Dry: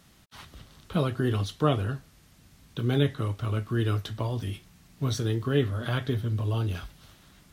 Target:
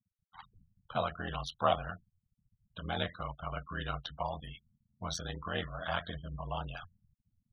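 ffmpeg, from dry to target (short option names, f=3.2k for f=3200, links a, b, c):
-af "afftfilt=real='re*gte(hypot(re,im),0.0112)':imag='im*gte(hypot(re,im),0.0112)':win_size=1024:overlap=0.75,aeval=exprs='val(0)*sin(2*PI*42*n/s)':c=same,lowshelf=f=520:t=q:w=3:g=-10.5"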